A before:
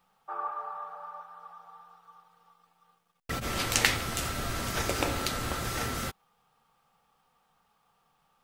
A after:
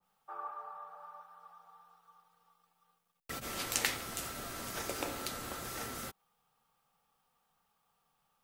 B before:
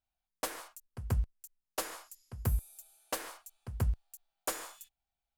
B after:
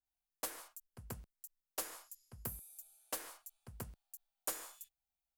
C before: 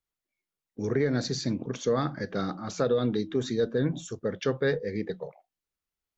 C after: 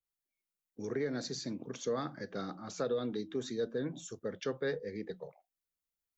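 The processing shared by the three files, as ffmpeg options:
-filter_complex "[0:a]acrossover=split=180|1200[a][b][c];[a]acompressor=threshold=-44dB:ratio=6[d];[c]crystalizer=i=1:c=0[e];[d][b][e]amix=inputs=3:normalize=0,adynamicequalizer=threshold=0.00891:dfrequency=1600:dqfactor=0.7:tfrequency=1600:tqfactor=0.7:attack=5:release=100:ratio=0.375:range=1.5:mode=cutabove:tftype=highshelf,volume=-8dB"

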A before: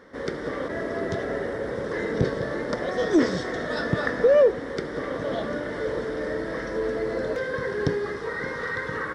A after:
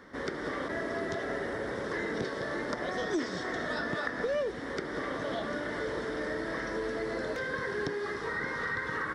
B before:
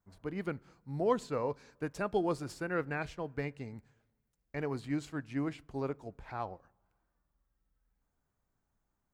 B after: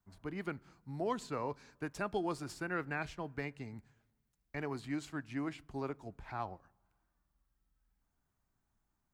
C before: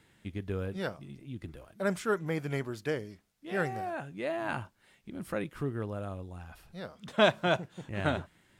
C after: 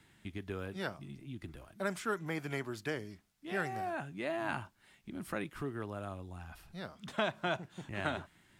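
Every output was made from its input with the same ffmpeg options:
-filter_complex "[0:a]equalizer=f=500:t=o:w=0.46:g=-7.5,acrossover=split=290|2300[a][b][c];[a]acompressor=threshold=-44dB:ratio=4[d];[b]acompressor=threshold=-32dB:ratio=4[e];[c]acompressor=threshold=-44dB:ratio=4[f];[d][e][f]amix=inputs=3:normalize=0"

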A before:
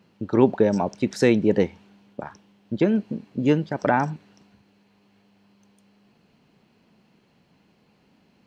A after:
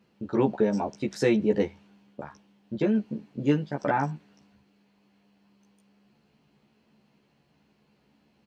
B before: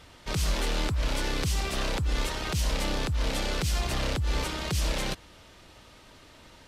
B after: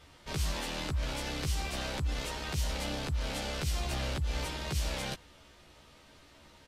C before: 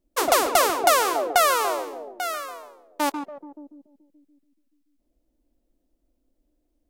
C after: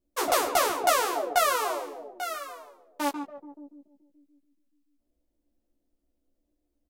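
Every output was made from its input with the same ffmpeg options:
-filter_complex "[0:a]asplit=2[a][b];[b]adelay=14,volume=-2dB[c];[a][c]amix=inputs=2:normalize=0,volume=-7dB"

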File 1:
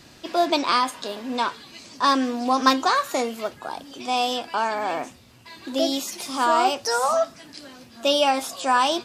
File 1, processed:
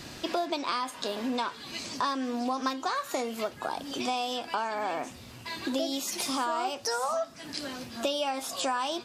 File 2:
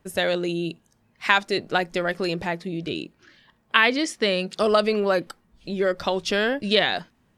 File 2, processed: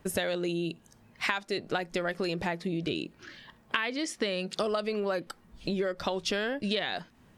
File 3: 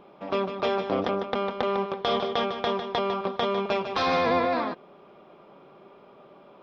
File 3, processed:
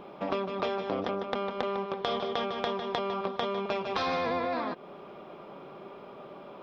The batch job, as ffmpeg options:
-af "acompressor=threshold=-34dB:ratio=6,volume=5.5dB"

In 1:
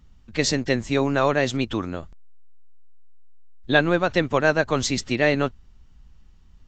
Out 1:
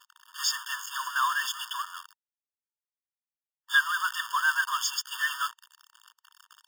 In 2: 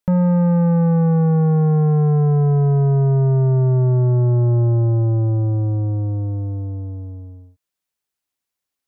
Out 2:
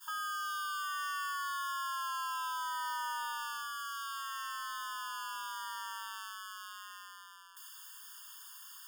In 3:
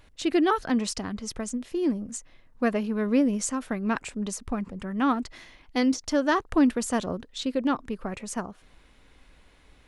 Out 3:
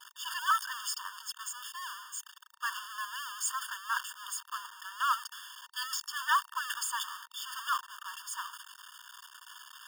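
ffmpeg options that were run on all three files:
-af "aeval=exprs='val(0)+0.5*0.1*sgn(val(0))':c=same,agate=range=-33dB:threshold=-18dB:ratio=3:detection=peak,afftfilt=real='re*eq(mod(floor(b*sr/1024/910),2),1)':imag='im*eq(mod(floor(b*sr/1024/910),2),1)':win_size=1024:overlap=0.75,volume=-2.5dB"

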